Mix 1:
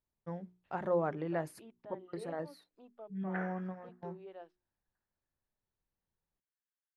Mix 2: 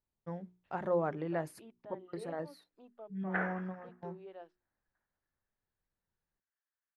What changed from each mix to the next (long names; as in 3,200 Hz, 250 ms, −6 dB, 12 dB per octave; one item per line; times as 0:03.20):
background +7.0 dB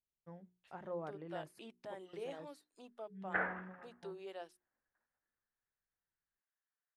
first voice −11.5 dB
second voice: remove head-to-tape spacing loss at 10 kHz 37 dB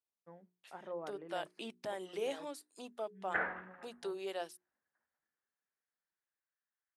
first voice: add band-pass filter 250–2,300 Hz
second voice +7.0 dB
master: add high-shelf EQ 4,900 Hz +10.5 dB